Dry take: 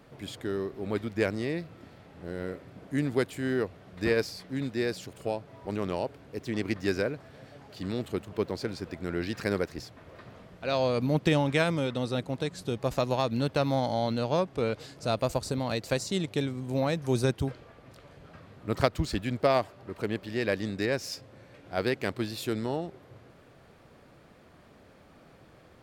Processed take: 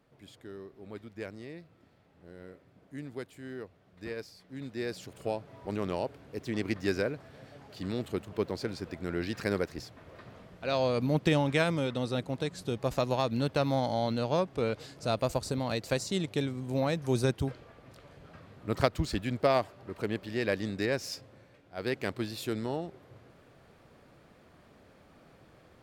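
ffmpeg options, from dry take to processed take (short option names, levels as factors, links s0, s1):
-af "volume=2.82,afade=t=in:st=4.41:d=0.88:silence=0.266073,afade=t=out:st=21.15:d=0.59:silence=0.266073,afade=t=in:st=21.74:d=0.19:silence=0.298538"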